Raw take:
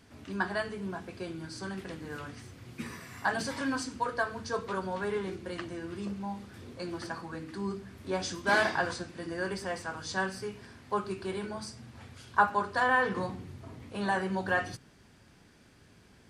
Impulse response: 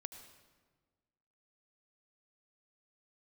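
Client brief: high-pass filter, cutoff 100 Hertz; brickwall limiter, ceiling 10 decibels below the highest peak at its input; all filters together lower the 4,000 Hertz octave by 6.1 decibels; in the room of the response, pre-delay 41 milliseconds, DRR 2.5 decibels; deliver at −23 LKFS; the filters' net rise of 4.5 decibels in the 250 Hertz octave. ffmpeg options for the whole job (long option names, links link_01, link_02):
-filter_complex "[0:a]highpass=100,equalizer=frequency=250:width_type=o:gain=6.5,equalizer=frequency=4000:width_type=o:gain=-8,alimiter=limit=-20.5dB:level=0:latency=1,asplit=2[link_01][link_02];[1:a]atrim=start_sample=2205,adelay=41[link_03];[link_02][link_03]afir=irnorm=-1:irlink=0,volume=1.5dB[link_04];[link_01][link_04]amix=inputs=2:normalize=0,volume=9dB"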